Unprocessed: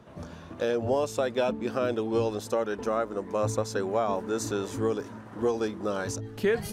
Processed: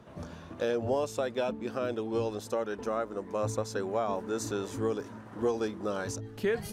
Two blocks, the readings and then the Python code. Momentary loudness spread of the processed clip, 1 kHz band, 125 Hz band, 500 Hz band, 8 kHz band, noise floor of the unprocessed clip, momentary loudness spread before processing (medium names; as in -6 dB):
5 LU, -3.5 dB, -3.5 dB, -3.5 dB, -3.5 dB, -45 dBFS, 5 LU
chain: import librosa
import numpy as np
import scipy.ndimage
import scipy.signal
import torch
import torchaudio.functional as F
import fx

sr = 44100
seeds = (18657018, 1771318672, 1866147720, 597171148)

y = fx.rider(x, sr, range_db=5, speed_s=2.0)
y = F.gain(torch.from_numpy(y), -4.0).numpy()